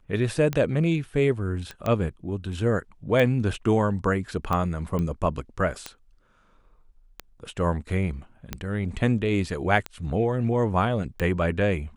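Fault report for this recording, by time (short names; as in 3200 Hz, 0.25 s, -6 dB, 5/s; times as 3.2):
tick 45 rpm -14 dBFS
1.71 pop -21 dBFS
4.99 pop -18 dBFS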